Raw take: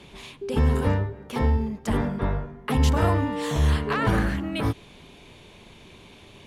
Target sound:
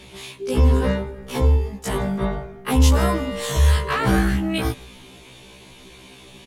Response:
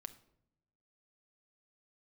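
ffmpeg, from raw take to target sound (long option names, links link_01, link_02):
-filter_complex "[0:a]asplit=4[link_01][link_02][link_03][link_04];[link_02]adelay=158,afreqshift=-48,volume=-23.5dB[link_05];[link_03]adelay=316,afreqshift=-96,volume=-30.8dB[link_06];[link_04]adelay=474,afreqshift=-144,volume=-38.2dB[link_07];[link_01][link_05][link_06][link_07]amix=inputs=4:normalize=0,asettb=1/sr,asplit=3[link_08][link_09][link_10];[link_08]atrim=end=0.564[link_11];[link_09]atrim=start=0.56:end=1.31,asetpts=PTS-STARTPTS,afade=type=in:duration=0.004:curve=qsin,afade=type=out:start_time=0.746:duration=0.004:curve=qsin,acrossover=split=6000[link_12][link_13];[link_13]acompressor=threshold=-59dB:ratio=4:attack=1:release=60[link_14];[link_12][link_14]amix=inputs=2:normalize=0[link_15];[link_10]atrim=start=1.306[link_16];[link_11][link_15]acrossfade=duration=0.004:curve1=hsin:curve2=qsin[link_17];[link_17][link_16]acrossfade=duration=0.004:curve1=qsin:curve2=hsin,aemphasis=mode=production:type=cd,afftfilt=real='re*1.73*eq(mod(b,3),0)':imag='im*1.73*eq(mod(b,3),0)':win_size=2048:overlap=0.75,volume=5.5dB"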